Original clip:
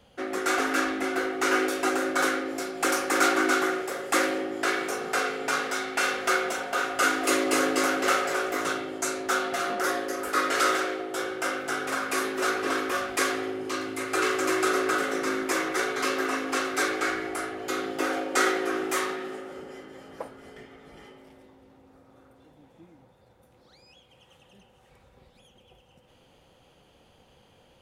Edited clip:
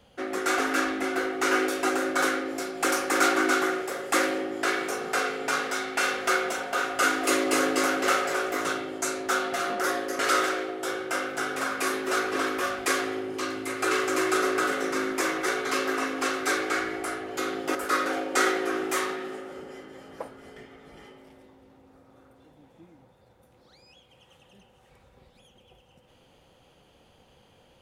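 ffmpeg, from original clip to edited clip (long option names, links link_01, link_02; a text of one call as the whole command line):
ffmpeg -i in.wav -filter_complex "[0:a]asplit=4[link_01][link_02][link_03][link_04];[link_01]atrim=end=10.192[link_05];[link_02]atrim=start=10.498:end=18.062[link_06];[link_03]atrim=start=10.188:end=10.502[link_07];[link_04]atrim=start=18.058[link_08];[link_05][link_06]acrossfade=duration=0.004:curve1=hsin:curve2=hsin[link_09];[link_09][link_07]acrossfade=duration=0.004:curve1=hsin:curve2=hsin[link_10];[link_10][link_08]acrossfade=duration=0.004:curve1=hsin:curve2=hsin" out.wav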